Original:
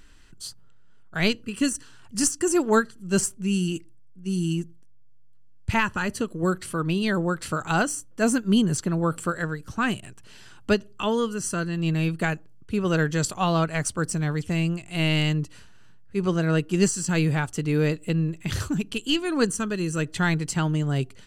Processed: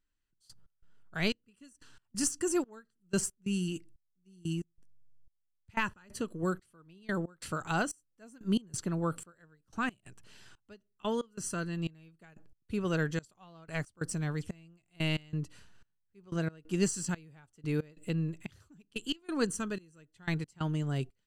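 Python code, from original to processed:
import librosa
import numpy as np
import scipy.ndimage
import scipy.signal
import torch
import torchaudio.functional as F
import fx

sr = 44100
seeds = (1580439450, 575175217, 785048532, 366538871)

y = fx.step_gate(x, sr, bpm=91, pattern='...x.xxx', floor_db=-24.0, edge_ms=4.5)
y = y * 10.0 ** (-8.0 / 20.0)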